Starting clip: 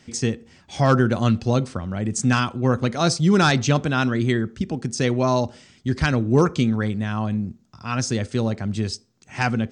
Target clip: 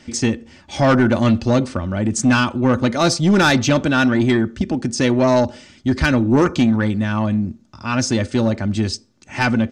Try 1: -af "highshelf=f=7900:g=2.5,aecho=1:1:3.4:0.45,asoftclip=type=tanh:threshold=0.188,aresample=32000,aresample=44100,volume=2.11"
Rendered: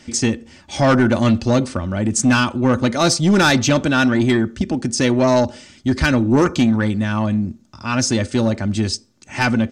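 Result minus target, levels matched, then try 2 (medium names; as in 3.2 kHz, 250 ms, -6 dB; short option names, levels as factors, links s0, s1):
8 kHz band +3.5 dB
-af "highshelf=f=7900:g=-7.5,aecho=1:1:3.4:0.45,asoftclip=type=tanh:threshold=0.188,aresample=32000,aresample=44100,volume=2.11"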